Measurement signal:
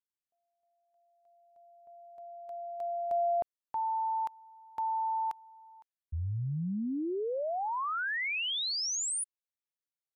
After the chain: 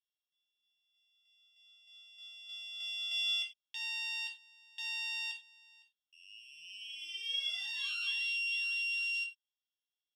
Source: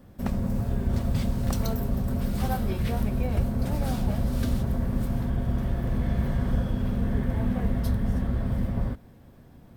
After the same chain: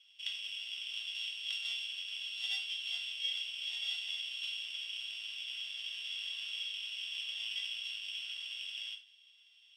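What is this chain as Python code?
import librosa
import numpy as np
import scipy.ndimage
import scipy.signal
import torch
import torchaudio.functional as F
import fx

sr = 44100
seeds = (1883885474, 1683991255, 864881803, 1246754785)

y = np.r_[np.sort(x[:len(x) // 16 * 16].reshape(-1, 16), axis=1).ravel(), x[len(x) // 16 * 16:]]
y = fx.ladder_bandpass(y, sr, hz=3400.0, resonance_pct=90)
y = fx.rev_gated(y, sr, seeds[0], gate_ms=120, shape='falling', drr_db=0.0)
y = F.gain(torch.from_numpy(y), 3.0).numpy()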